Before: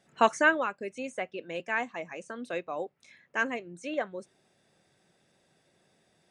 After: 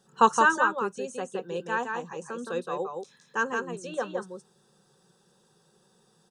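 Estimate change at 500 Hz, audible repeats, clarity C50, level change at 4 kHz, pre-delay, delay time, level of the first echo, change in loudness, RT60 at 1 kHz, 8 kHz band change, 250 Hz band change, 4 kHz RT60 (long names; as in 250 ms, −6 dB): +1.5 dB, 1, no reverb audible, +0.5 dB, no reverb audible, 168 ms, −4.5 dB, +3.0 dB, no reverb audible, +6.5 dB, +1.5 dB, no reverb audible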